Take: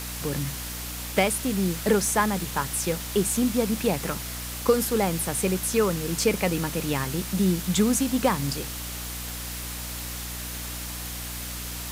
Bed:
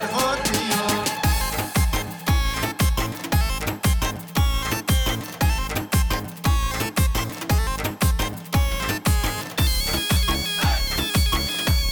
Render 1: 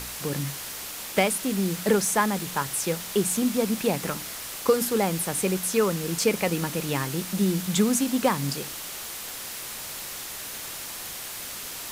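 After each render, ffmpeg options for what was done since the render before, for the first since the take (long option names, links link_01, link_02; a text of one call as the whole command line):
ffmpeg -i in.wav -af "bandreject=frequency=60:width_type=h:width=4,bandreject=frequency=120:width_type=h:width=4,bandreject=frequency=180:width_type=h:width=4,bandreject=frequency=240:width_type=h:width=4,bandreject=frequency=300:width_type=h:width=4" out.wav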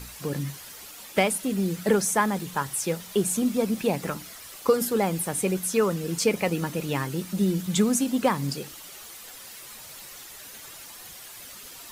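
ffmpeg -i in.wav -af "afftdn=noise_reduction=10:noise_floor=-37" out.wav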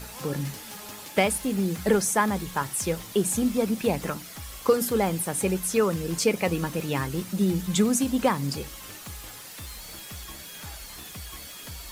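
ffmpeg -i in.wav -i bed.wav -filter_complex "[1:a]volume=-22dB[link_01];[0:a][link_01]amix=inputs=2:normalize=0" out.wav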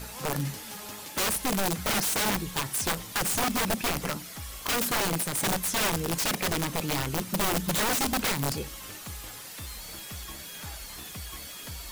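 ffmpeg -i in.wav -af "aeval=exprs='(mod(11.9*val(0)+1,2)-1)/11.9':channel_layout=same" out.wav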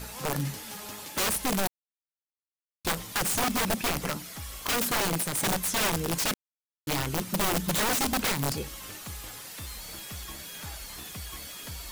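ffmpeg -i in.wav -filter_complex "[0:a]asettb=1/sr,asplit=3[link_01][link_02][link_03];[link_01]atrim=end=1.674[link_04];[link_02]atrim=start=1.67:end=2.85,asetpts=PTS-STARTPTS,afade=type=in:duration=0.004:curve=qsin,afade=type=out:start_time=1.176:duration=0.004:curve=qsin,acrusher=bits=2:mix=0:aa=0.5[link_05];[link_03]atrim=start=2.846[link_06];[link_04][link_05]acrossfade=duration=0.004:curve1=hsin:curve2=qsin[link_07];[link_07][link_06]acrossfade=duration=0.004:curve1=qsin:curve2=hsin,asplit=3[link_08][link_09][link_10];[link_08]atrim=end=6.34,asetpts=PTS-STARTPTS,afade=type=out:start_time=6.336:duration=0.004:curve=hsin[link_11];[link_09]atrim=start=6.34:end=6.87,asetpts=PTS-STARTPTS,volume=0[link_12];[link_10]atrim=start=6.87,asetpts=PTS-STARTPTS,afade=type=in:duration=0.004:curve=hsin[link_13];[link_11][link_12][link_13]concat=n=3:v=0:a=1" out.wav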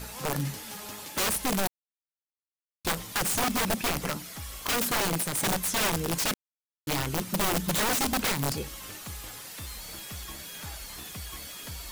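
ffmpeg -i in.wav -af anull out.wav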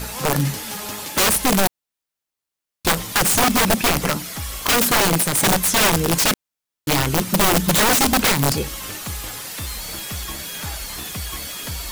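ffmpeg -i in.wav -af "volume=10.5dB" out.wav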